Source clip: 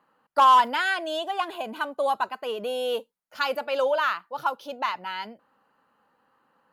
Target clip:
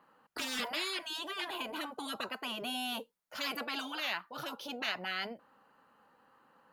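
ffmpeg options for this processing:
-af "afftfilt=real='re*lt(hypot(re,im),0.0891)':imag='im*lt(hypot(re,im),0.0891)':win_size=1024:overlap=0.75,adynamicequalizer=threshold=0.00112:dfrequency=7400:dqfactor=2.3:tfrequency=7400:tqfactor=2.3:attack=5:release=100:ratio=0.375:range=2.5:mode=cutabove:tftype=bell,volume=1.5dB"

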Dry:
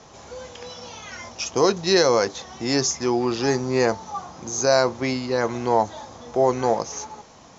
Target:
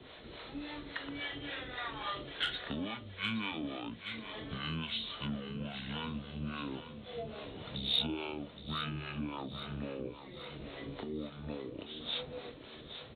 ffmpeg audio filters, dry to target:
-filter_complex "[0:a]highshelf=f=3.8k:g=-10,acompressor=threshold=-32dB:ratio=8,acrossover=split=420|2000[a][b][c];[c]aeval=exprs='0.15*sin(PI/2*2.24*val(0)/0.15)':c=same[d];[a][b][d]amix=inputs=3:normalize=0,acrossover=split=810[e][f];[e]aeval=exprs='val(0)*(1-0.7/2+0.7/2*cos(2*PI*6.2*n/s))':c=same[g];[f]aeval=exprs='val(0)*(1-0.7/2-0.7/2*cos(2*PI*6.2*n/s))':c=same[h];[g][h]amix=inputs=2:normalize=0,asplit=2[i][j];[j]aecho=0:1:473|946|1419|1892|2365|2838:0.282|0.147|0.0762|0.0396|0.0206|0.0107[k];[i][k]amix=inputs=2:normalize=0,asetrate=25442,aresample=44100,volume=-3dB"

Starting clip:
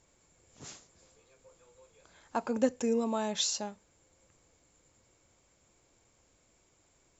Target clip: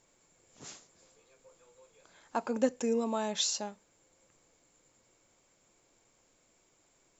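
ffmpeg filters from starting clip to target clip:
-af "equalizer=f=62:t=o:w=1.5:g=-13"

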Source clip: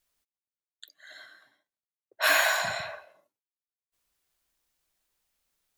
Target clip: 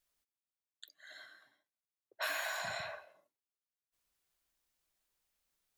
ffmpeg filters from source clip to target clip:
-af "acompressor=threshold=-30dB:ratio=6,volume=-5dB"

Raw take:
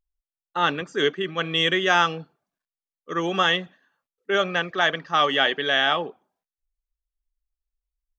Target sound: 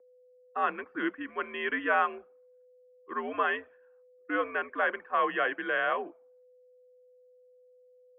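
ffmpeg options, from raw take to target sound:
-af "aeval=exprs='val(0)+0.00282*sin(2*PI*600*n/s)':c=same,highpass=f=430:t=q:w=0.5412,highpass=f=430:t=q:w=1.307,lowpass=f=2.4k:t=q:w=0.5176,lowpass=f=2.4k:t=q:w=0.7071,lowpass=f=2.4k:t=q:w=1.932,afreqshift=-99,volume=-6dB"

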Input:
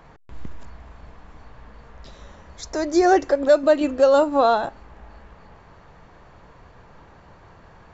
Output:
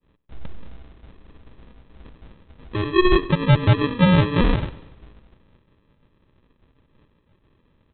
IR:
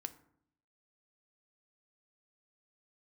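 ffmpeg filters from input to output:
-af "agate=range=-33dB:threshold=-38dB:ratio=3:detection=peak,aresample=8000,acrusher=samples=11:mix=1:aa=0.000001,aresample=44100,aecho=1:1:97|194|291|388|485:0.112|0.0628|0.0352|0.0197|0.011"

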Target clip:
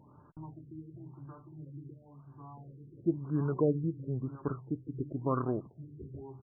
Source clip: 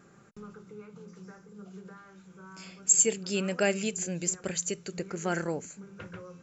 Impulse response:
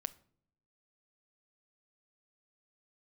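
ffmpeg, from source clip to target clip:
-af "asetrate=33038,aresample=44100,atempo=1.33484,afftfilt=real='re*lt(b*sr/1024,480*pow(1700/480,0.5+0.5*sin(2*PI*0.96*pts/sr)))':imag='im*lt(b*sr/1024,480*pow(1700/480,0.5+0.5*sin(2*PI*0.96*pts/sr)))':win_size=1024:overlap=0.75"

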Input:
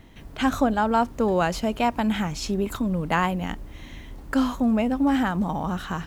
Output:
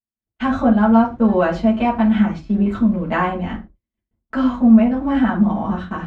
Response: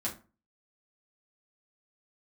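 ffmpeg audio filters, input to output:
-filter_complex "[0:a]lowpass=3k,agate=range=-57dB:threshold=-32dB:ratio=16:detection=peak[a];[1:a]atrim=start_sample=2205,atrim=end_sample=6174[b];[a][b]afir=irnorm=-1:irlink=0"

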